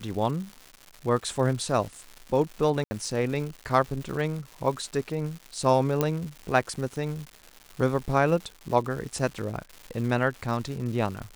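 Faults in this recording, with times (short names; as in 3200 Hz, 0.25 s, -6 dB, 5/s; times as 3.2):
crackle 300/s -35 dBFS
2.84–2.91 gap 70 ms
6.01 pop -10 dBFS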